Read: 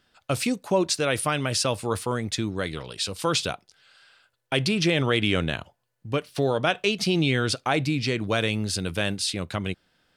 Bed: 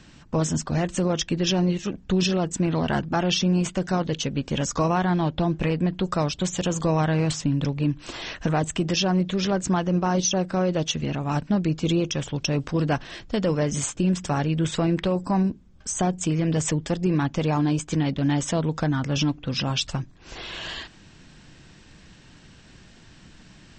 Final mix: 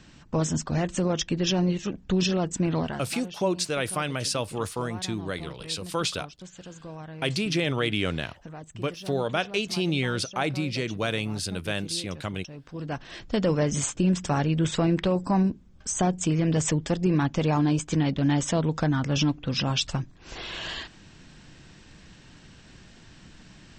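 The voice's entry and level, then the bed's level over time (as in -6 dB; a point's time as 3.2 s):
2.70 s, -3.5 dB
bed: 2.8 s -2 dB
3.09 s -18.5 dB
12.56 s -18.5 dB
13.23 s -0.5 dB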